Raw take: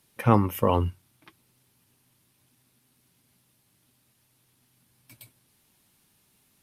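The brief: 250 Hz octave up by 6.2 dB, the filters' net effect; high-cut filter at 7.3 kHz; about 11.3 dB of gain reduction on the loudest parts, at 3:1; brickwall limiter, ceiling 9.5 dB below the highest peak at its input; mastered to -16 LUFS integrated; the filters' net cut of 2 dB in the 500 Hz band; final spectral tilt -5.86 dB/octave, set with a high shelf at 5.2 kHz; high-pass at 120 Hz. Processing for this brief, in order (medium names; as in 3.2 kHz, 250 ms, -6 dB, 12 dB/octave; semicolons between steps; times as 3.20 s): high-pass 120 Hz; low-pass 7.3 kHz; peaking EQ 250 Hz +9 dB; peaking EQ 500 Hz -5 dB; treble shelf 5.2 kHz +8.5 dB; compression 3:1, threshold -27 dBFS; trim +20 dB; peak limiter -3 dBFS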